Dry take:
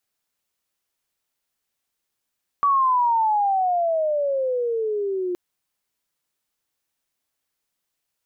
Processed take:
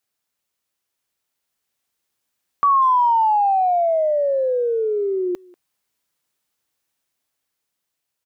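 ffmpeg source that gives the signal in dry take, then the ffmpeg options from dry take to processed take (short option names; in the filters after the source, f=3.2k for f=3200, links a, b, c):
-f lavfi -i "aevalsrc='pow(10,(-15-7.5*t/2.72)/20)*sin(2*PI*1150*2.72/(-20.5*log(2)/12)*(exp(-20.5*log(2)/12*t/2.72)-1))':d=2.72:s=44100"
-filter_complex "[0:a]dynaudnorm=f=450:g=7:m=3.5dB,highpass=43,asplit=2[a][b];[b]adelay=190,highpass=300,lowpass=3.4k,asoftclip=type=hard:threshold=-20.5dB,volume=-23dB[c];[a][c]amix=inputs=2:normalize=0"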